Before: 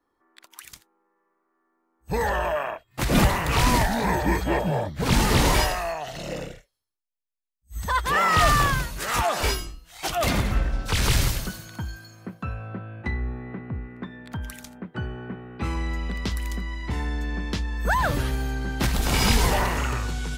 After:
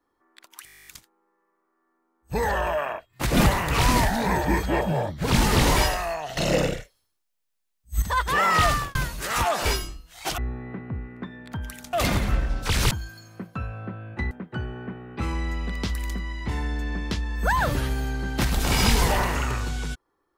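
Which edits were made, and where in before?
0:00.65: stutter 0.02 s, 12 plays
0:06.15–0:07.80: clip gain +10.5 dB
0:08.37–0:08.73: fade out
0:11.14–0:11.78: remove
0:13.18–0:14.73: move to 0:10.16

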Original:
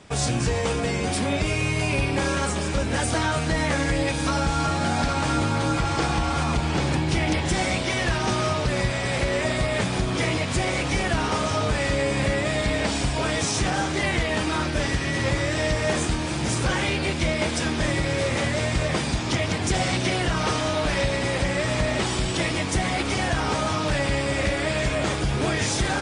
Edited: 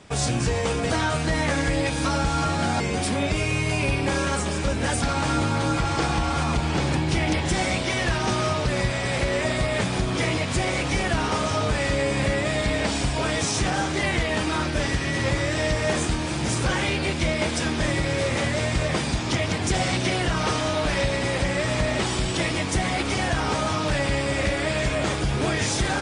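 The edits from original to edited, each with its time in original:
0:03.12–0:05.02: move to 0:00.90

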